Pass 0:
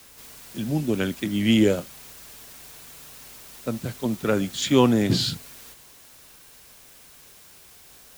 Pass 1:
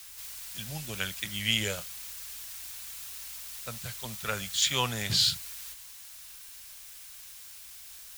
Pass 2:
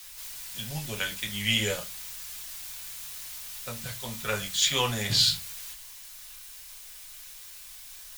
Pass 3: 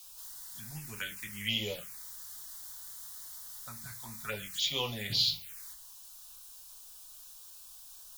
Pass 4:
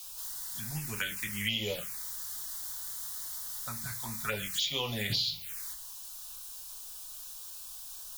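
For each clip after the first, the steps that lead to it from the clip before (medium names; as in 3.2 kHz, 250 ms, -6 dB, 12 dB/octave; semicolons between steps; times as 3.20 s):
amplifier tone stack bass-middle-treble 10-0-10; trim +3.5 dB
reverberation RT60 0.25 s, pre-delay 4 ms, DRR 1 dB
touch-sensitive phaser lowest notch 290 Hz, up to 1.6 kHz, full sweep at -23.5 dBFS; bass shelf 170 Hz -5.5 dB; trim -5 dB
compression 6:1, threshold -35 dBFS, peak gain reduction 10.5 dB; trim +6.5 dB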